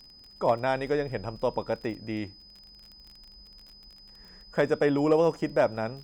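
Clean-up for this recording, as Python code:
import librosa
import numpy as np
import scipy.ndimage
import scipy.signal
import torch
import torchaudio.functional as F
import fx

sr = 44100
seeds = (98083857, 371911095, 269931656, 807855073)

y = fx.fix_declip(x, sr, threshold_db=-13.5)
y = fx.fix_declick_ar(y, sr, threshold=6.5)
y = fx.notch(y, sr, hz=5000.0, q=30.0)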